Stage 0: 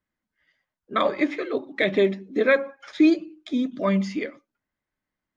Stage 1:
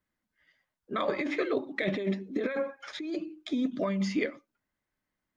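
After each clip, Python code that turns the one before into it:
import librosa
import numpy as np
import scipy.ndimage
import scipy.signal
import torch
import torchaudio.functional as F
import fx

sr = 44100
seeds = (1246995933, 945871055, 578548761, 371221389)

y = fx.over_compress(x, sr, threshold_db=-25.0, ratio=-1.0)
y = y * librosa.db_to_amplitude(-4.0)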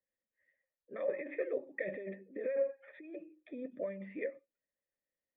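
y = fx.formant_cascade(x, sr, vowel='e')
y = y * librosa.db_to_amplitude(1.5)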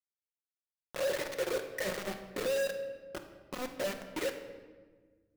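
y = fx.quant_companded(x, sr, bits=2)
y = fx.room_shoebox(y, sr, seeds[0], volume_m3=1300.0, walls='mixed', distance_m=0.96)
y = y * librosa.db_to_amplitude(-5.5)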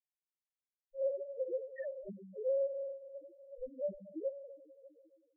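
y = fx.echo_stepped(x, sr, ms=147, hz=2600.0, octaves=-0.7, feedback_pct=70, wet_db=-10.5)
y = fx.spec_topn(y, sr, count=1)
y = y * librosa.db_to_amplitude(4.5)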